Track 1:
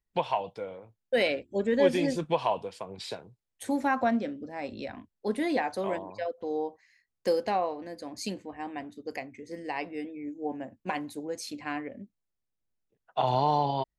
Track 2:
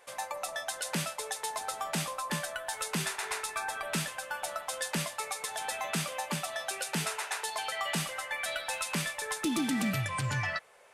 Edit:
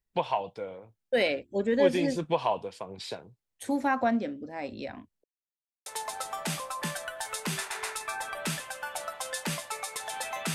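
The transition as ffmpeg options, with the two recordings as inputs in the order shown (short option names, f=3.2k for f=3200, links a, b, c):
-filter_complex "[0:a]apad=whole_dur=10.54,atrim=end=10.54,asplit=2[a][b];[a]atrim=end=5.24,asetpts=PTS-STARTPTS,afade=t=out:st=5.236:d=0.004:c=hsin[c];[b]atrim=start=5.24:end=5.86,asetpts=PTS-STARTPTS,volume=0[d];[1:a]atrim=start=1.34:end=6.02,asetpts=PTS-STARTPTS,afade=t=in:d=0.004:c=hsin[e];[c][d][e]concat=n=3:v=0:a=1"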